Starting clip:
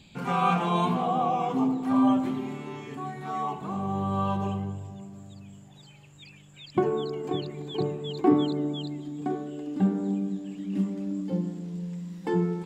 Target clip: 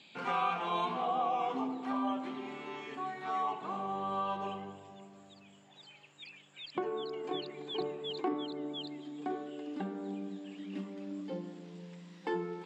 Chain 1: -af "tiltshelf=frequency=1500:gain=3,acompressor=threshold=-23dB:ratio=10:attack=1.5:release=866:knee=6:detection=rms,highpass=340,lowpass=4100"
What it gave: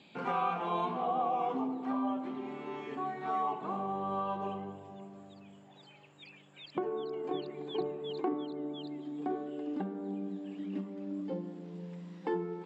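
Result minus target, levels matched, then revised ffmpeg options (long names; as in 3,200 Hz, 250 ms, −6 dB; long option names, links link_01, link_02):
2,000 Hz band −4.0 dB
-af "tiltshelf=frequency=1500:gain=-3,acompressor=threshold=-23dB:ratio=10:attack=1.5:release=866:knee=6:detection=rms,highpass=340,lowpass=4100"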